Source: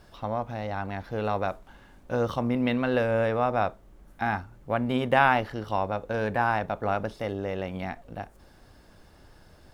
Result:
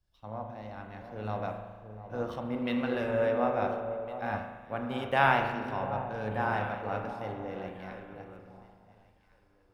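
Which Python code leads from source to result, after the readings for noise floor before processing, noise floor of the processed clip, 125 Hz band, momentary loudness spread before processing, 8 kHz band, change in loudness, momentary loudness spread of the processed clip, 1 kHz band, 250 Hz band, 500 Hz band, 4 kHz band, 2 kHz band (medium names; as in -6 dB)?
-55 dBFS, -66 dBFS, -5.5 dB, 10 LU, no reading, -4.5 dB, 16 LU, -4.5 dB, -5.5 dB, -4.5 dB, -4.0 dB, -4.0 dB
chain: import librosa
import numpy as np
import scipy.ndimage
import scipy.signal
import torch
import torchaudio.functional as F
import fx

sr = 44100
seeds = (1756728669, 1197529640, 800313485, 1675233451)

y = fx.echo_alternate(x, sr, ms=704, hz=1000.0, feedback_pct=52, wet_db=-6.5)
y = fx.rev_spring(y, sr, rt60_s=2.4, pass_ms=(37,), chirp_ms=65, drr_db=2.5)
y = fx.band_widen(y, sr, depth_pct=70)
y = y * librosa.db_to_amplitude(-8.5)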